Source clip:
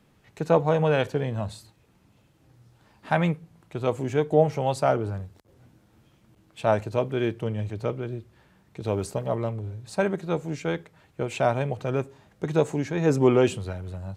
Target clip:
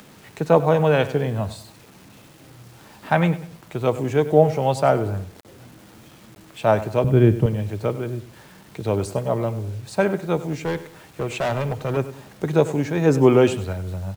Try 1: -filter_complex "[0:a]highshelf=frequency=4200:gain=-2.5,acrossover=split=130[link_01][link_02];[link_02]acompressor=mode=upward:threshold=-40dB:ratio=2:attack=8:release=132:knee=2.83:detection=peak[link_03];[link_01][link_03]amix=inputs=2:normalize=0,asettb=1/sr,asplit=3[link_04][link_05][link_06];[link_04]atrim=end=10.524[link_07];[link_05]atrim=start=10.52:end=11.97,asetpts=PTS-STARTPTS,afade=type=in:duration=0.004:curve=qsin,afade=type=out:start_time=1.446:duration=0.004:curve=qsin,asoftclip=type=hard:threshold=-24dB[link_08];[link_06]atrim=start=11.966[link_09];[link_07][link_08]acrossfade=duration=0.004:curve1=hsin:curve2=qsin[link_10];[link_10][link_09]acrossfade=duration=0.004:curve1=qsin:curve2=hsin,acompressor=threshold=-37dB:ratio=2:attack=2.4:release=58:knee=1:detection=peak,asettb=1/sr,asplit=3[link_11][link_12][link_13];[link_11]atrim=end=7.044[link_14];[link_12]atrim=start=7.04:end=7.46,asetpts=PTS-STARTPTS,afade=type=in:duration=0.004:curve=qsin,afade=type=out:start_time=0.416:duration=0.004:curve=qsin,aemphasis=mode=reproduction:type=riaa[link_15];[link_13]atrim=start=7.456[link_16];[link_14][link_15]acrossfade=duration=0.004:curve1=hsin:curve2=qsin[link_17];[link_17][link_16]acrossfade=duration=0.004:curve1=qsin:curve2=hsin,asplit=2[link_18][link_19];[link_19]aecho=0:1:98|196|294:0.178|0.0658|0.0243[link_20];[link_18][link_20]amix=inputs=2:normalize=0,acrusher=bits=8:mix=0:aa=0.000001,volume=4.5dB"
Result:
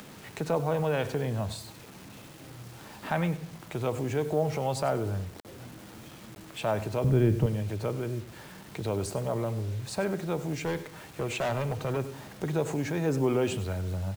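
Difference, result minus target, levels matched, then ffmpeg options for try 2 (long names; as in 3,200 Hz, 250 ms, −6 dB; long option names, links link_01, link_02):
downward compressor: peak gain reduction +14 dB
-filter_complex "[0:a]highshelf=frequency=4200:gain=-2.5,acrossover=split=130[link_01][link_02];[link_02]acompressor=mode=upward:threshold=-40dB:ratio=2:attack=8:release=132:knee=2.83:detection=peak[link_03];[link_01][link_03]amix=inputs=2:normalize=0,asettb=1/sr,asplit=3[link_04][link_05][link_06];[link_04]atrim=end=7.044[link_07];[link_05]atrim=start=7.04:end=7.46,asetpts=PTS-STARTPTS,afade=type=in:duration=0.004:curve=qsin,afade=type=out:start_time=0.416:duration=0.004:curve=qsin,aemphasis=mode=reproduction:type=riaa[link_08];[link_06]atrim=start=7.456[link_09];[link_07][link_08]acrossfade=duration=0.004:curve1=hsin:curve2=qsin[link_10];[link_10][link_09]acrossfade=duration=0.004:curve1=qsin:curve2=hsin,asettb=1/sr,asplit=3[link_11][link_12][link_13];[link_11]atrim=end=10.524[link_14];[link_12]atrim=start=10.52:end=11.97,asetpts=PTS-STARTPTS,afade=type=in:duration=0.004:curve=qsin,afade=type=out:start_time=1.446:duration=0.004:curve=qsin,asoftclip=type=hard:threshold=-24dB[link_15];[link_13]atrim=start=11.966[link_16];[link_14][link_15]acrossfade=duration=0.004:curve1=hsin:curve2=qsin[link_17];[link_17][link_16]acrossfade=duration=0.004:curve1=qsin:curve2=hsin,asplit=2[link_18][link_19];[link_19]aecho=0:1:98|196|294:0.178|0.0658|0.0243[link_20];[link_18][link_20]amix=inputs=2:normalize=0,acrusher=bits=8:mix=0:aa=0.000001,volume=4.5dB"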